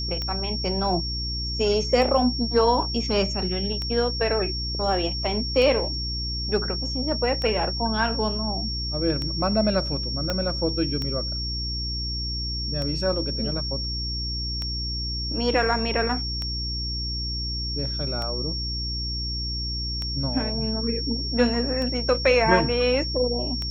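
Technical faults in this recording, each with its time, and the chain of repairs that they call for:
mains hum 60 Hz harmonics 6 −31 dBFS
scratch tick 33 1/3 rpm −17 dBFS
whistle 5,500 Hz −29 dBFS
0:10.30: click −11 dBFS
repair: click removal
hum removal 60 Hz, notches 6
notch filter 5,500 Hz, Q 30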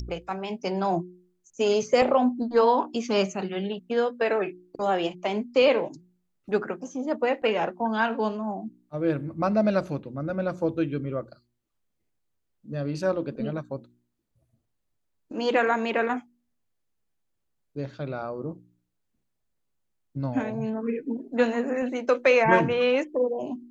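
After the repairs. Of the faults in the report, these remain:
0:10.30: click

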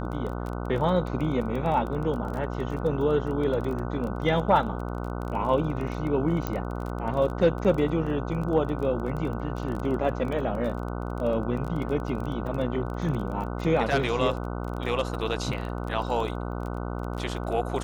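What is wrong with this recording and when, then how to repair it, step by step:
mains buzz 60 Hz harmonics 25 −32 dBFS
surface crackle 22 per second −32 dBFS
0:06.47: click −14 dBFS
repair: click removal
hum removal 60 Hz, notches 25

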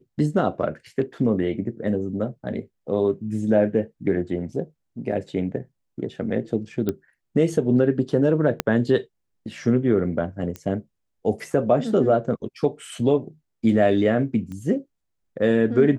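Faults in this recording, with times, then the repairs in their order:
0:06.89: click −12 dBFS
0:08.60: click −5 dBFS
0:10.56: click −18 dBFS
0:14.52: click −25 dBFS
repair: click removal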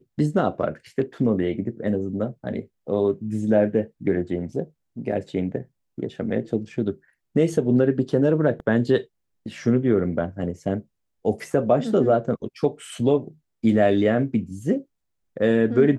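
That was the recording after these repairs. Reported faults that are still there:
0:08.60: click

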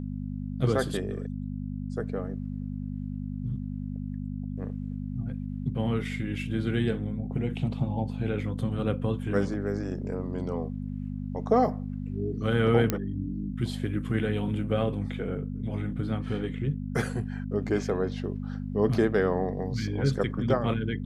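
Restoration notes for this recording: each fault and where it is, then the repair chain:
mains hum 50 Hz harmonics 5 −34 dBFS
0:12.90: click −10 dBFS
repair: click removal
hum removal 50 Hz, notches 5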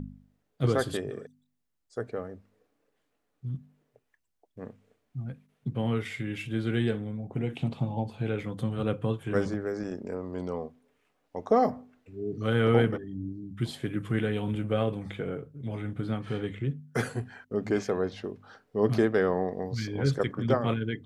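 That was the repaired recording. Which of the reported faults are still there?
none of them is left

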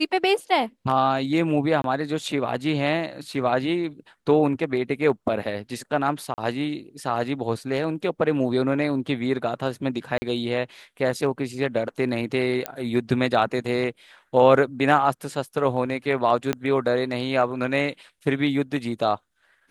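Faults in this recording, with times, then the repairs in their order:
0:01.82–0:01.84: drop-out 22 ms
0:06.34–0:06.38: drop-out 39 ms
0:10.18–0:10.22: drop-out 40 ms
0:12.66: click −10 dBFS
0:16.53: click −10 dBFS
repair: click removal
repair the gap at 0:01.82, 22 ms
repair the gap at 0:06.34, 39 ms
repair the gap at 0:10.18, 40 ms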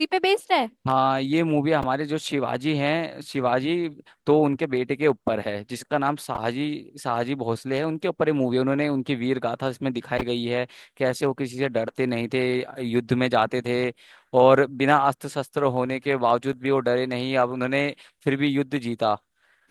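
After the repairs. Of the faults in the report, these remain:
0:16.53: click

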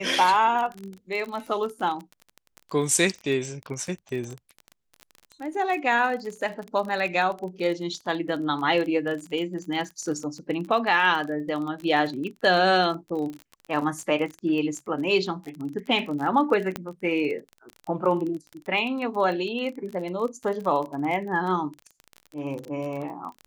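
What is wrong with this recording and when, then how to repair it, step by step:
surface crackle 29 per second −31 dBFS
0:16.76: click −13 dBFS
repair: click removal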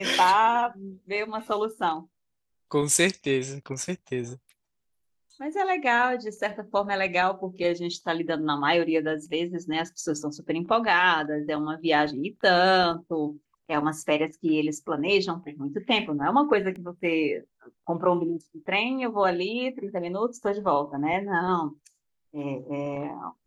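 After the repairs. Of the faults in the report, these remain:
0:16.76: click

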